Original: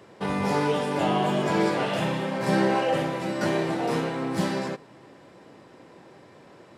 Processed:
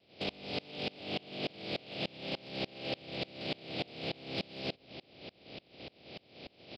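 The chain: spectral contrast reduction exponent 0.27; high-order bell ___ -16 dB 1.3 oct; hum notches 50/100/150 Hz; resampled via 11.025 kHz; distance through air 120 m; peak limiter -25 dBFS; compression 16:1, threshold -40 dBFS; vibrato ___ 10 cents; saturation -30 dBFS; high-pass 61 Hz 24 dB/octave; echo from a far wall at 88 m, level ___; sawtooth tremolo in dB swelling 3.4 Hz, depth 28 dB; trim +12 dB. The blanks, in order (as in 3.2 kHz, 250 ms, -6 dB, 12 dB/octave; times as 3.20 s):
1.3 kHz, 0.49 Hz, -19 dB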